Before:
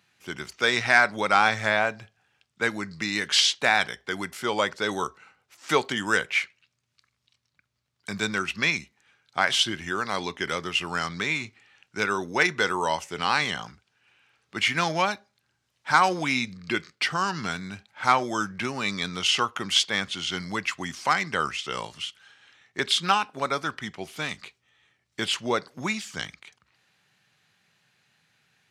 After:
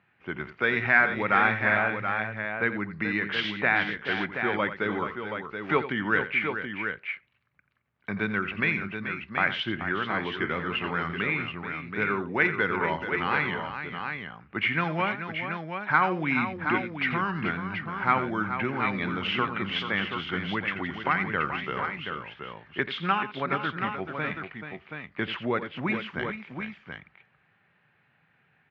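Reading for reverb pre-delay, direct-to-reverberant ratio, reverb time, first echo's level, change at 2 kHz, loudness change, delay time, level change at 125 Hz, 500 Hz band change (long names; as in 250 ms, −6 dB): no reverb audible, no reverb audible, no reverb audible, −12.5 dB, 0.0 dB, −2.5 dB, 86 ms, +3.0 dB, −1.0 dB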